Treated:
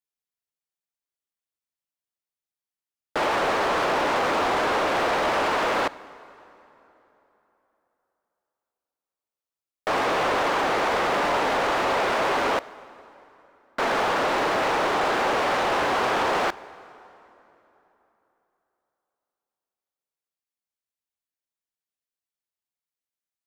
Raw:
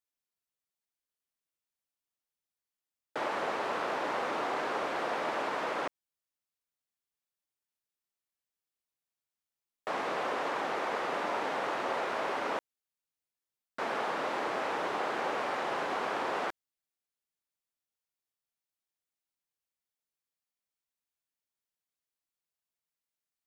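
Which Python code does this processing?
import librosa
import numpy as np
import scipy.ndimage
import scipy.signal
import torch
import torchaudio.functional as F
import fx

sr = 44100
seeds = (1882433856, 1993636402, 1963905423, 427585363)

y = fx.leveller(x, sr, passes=3)
y = fx.rev_plate(y, sr, seeds[0], rt60_s=3.5, hf_ratio=0.7, predelay_ms=0, drr_db=18.0)
y = y * 10.0 ** (2.5 / 20.0)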